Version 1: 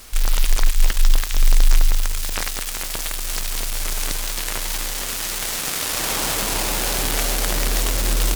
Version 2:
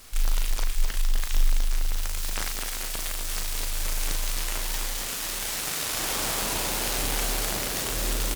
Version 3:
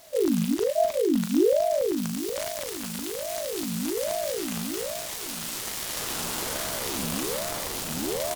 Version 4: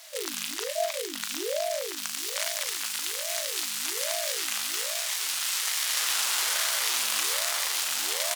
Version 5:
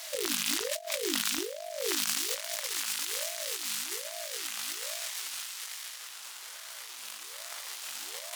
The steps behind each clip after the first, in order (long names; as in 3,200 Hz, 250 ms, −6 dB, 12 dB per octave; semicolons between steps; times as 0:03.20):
downward compressor, threshold −13 dBFS, peak gain reduction 5.5 dB; on a send: loudspeakers that aren't time-aligned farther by 13 metres −5 dB, 88 metres −6 dB; on the sum: level −7 dB
notch filter 2,000 Hz, Q 6; ring modulator whose carrier an LFO sweeps 430 Hz, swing 55%, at 1.2 Hz
high-pass filter 1,400 Hz 12 dB per octave; high-shelf EQ 11,000 Hz −7.5 dB; level +7.5 dB
compressor whose output falls as the input rises −35 dBFS, ratio −0.5